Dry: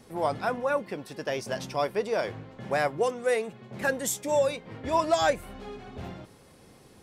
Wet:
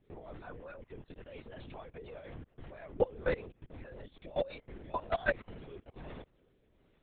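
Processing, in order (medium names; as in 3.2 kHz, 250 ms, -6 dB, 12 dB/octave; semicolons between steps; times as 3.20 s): coarse spectral quantiser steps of 15 dB; 2.93–3.95 s: bass shelf 340 Hz +4 dB; level held to a coarse grid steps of 22 dB; rotary cabinet horn 5.5 Hz, later 1.2 Hz, at 3.78 s; LPC vocoder at 8 kHz whisper; trim -1 dB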